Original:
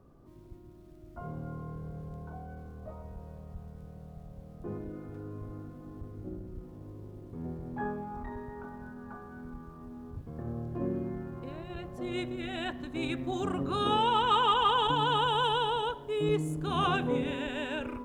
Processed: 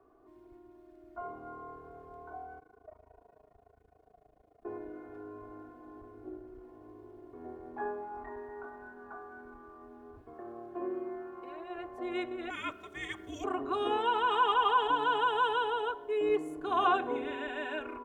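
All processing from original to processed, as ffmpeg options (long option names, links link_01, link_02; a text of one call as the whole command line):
ffmpeg -i in.wav -filter_complex "[0:a]asettb=1/sr,asplit=3[link_01][link_02][link_03];[link_01]atrim=end=2.594[link_04];[link_02]atrim=start=2.59:end=4.65,asetpts=PTS-STARTPTS,afade=type=in:duration=0.004:curve=qsin,afade=type=out:start_time=2.056:duration=0.004:curve=qsin,equalizer=frequency=1200:width_type=o:width=0.39:gain=-4.5,flanger=delay=19:depth=6.1:speed=1.2,tremolo=f=27:d=1[link_05];[link_03]atrim=start=4.646[link_06];[link_04][link_05]acrossfade=duration=0.004:curve1=hsin:curve2=qsin[link_07];[link_07][link_06]acrossfade=duration=0.004:curve1=qsin:curve2=hsin,asettb=1/sr,asplit=3[link_08][link_09][link_10];[link_08]atrim=end=10.334[link_11];[link_09]atrim=start=10.33:end=11.78,asetpts=PTS-STARTPTS,afade=type=in:duration=0.004:curve=qsin,afade=type=out:start_time=1.446:duration=0.004:curve=qsin,lowshelf=frequency=190:gain=-10,aecho=1:1:5.4:0.33,atrim=end_sample=63945[link_12];[link_10]atrim=start=11.776[link_13];[link_11][link_12]acrossfade=duration=0.004:curve1=hsin:curve2=qsin[link_14];[link_14][link_13]acrossfade=duration=0.004:curve1=qsin:curve2=hsin,asettb=1/sr,asplit=3[link_15][link_16][link_17];[link_15]atrim=end=12.504[link_18];[link_16]atrim=start=12.5:end=13.44,asetpts=PTS-STARTPTS,afade=type=in:duration=0.004:curve=qsin,afade=type=out:start_time=0.936:duration=0.004:curve=qsin,bass=frequency=250:gain=-6,treble=frequency=4000:gain=10,afreqshift=-450[link_19];[link_17]atrim=start=13.436[link_20];[link_18][link_19]acrossfade=duration=0.004:curve1=hsin:curve2=qsin[link_21];[link_21][link_20]acrossfade=duration=0.004:curve1=qsin:curve2=hsin,acrossover=split=350 2200:gain=0.112 1 0.224[link_22][link_23][link_24];[link_22][link_23][link_24]amix=inputs=3:normalize=0,aecho=1:1:2.8:0.82" out.wav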